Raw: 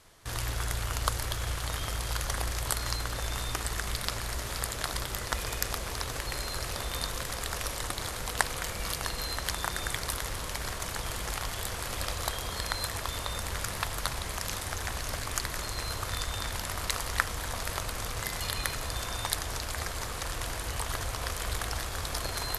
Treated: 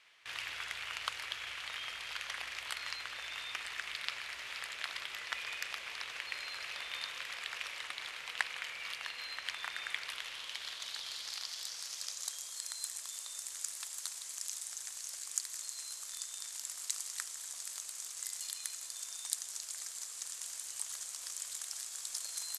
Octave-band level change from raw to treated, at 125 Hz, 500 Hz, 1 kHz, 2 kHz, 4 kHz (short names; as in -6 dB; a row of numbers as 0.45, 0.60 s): under -35 dB, -21.0 dB, -13.5 dB, -5.5 dB, -5.5 dB